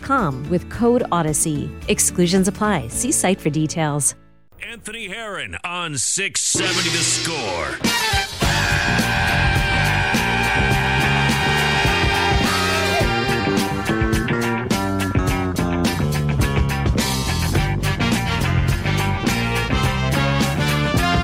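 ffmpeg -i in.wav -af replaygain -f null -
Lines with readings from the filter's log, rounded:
track_gain = +1.3 dB
track_peak = 0.377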